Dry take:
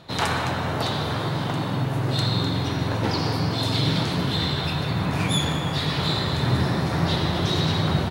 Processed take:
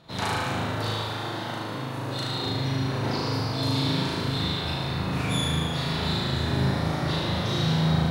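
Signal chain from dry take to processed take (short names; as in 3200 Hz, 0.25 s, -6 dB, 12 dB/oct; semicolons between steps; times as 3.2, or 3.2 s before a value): 0.91–2.46 HPF 250 Hz 6 dB/oct; on a send: flutter echo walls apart 6.4 m, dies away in 1.2 s; on the sum: gain -7.5 dB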